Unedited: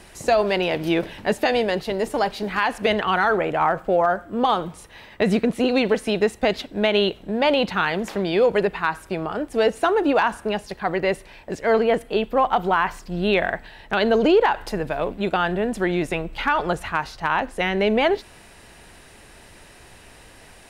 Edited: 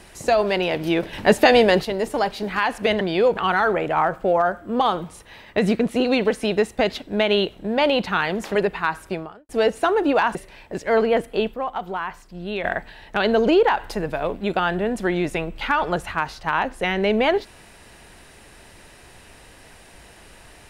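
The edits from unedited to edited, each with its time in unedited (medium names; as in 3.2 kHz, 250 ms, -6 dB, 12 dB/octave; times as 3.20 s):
1.13–1.85 s: gain +6.5 dB
8.19–8.55 s: move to 3.01 s
9.13–9.49 s: fade out quadratic
10.35–11.12 s: delete
12.31–13.41 s: gain -8 dB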